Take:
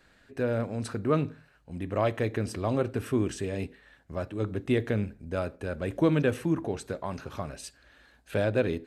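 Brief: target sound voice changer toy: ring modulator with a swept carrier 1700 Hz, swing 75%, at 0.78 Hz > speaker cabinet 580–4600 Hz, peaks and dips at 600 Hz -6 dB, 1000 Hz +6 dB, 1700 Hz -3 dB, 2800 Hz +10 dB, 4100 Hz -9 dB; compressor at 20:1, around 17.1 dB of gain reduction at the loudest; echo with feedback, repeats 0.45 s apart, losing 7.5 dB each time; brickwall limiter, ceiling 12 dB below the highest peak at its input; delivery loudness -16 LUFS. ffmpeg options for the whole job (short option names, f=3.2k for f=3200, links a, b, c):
-af "acompressor=threshold=-37dB:ratio=20,alimiter=level_in=13dB:limit=-24dB:level=0:latency=1,volume=-13dB,aecho=1:1:450|900|1350|1800|2250:0.422|0.177|0.0744|0.0312|0.0131,aeval=exprs='val(0)*sin(2*PI*1700*n/s+1700*0.75/0.78*sin(2*PI*0.78*n/s))':c=same,highpass=580,equalizer=f=600:t=q:w=4:g=-6,equalizer=f=1k:t=q:w=4:g=6,equalizer=f=1.7k:t=q:w=4:g=-3,equalizer=f=2.8k:t=q:w=4:g=10,equalizer=f=4.1k:t=q:w=4:g=-9,lowpass=f=4.6k:w=0.5412,lowpass=f=4.6k:w=1.3066,volume=28.5dB"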